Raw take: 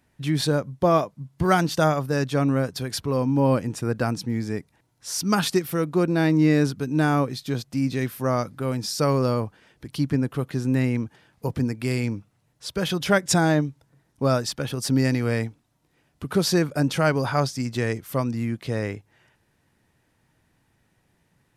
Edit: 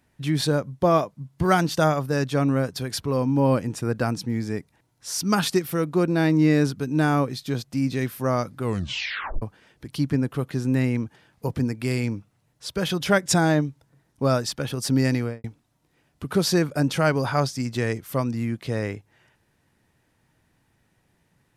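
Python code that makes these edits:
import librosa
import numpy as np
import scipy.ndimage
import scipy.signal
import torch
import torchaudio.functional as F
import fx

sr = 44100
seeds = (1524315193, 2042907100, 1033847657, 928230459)

y = fx.studio_fade_out(x, sr, start_s=15.16, length_s=0.28)
y = fx.edit(y, sr, fx.tape_stop(start_s=8.59, length_s=0.83), tone=tone)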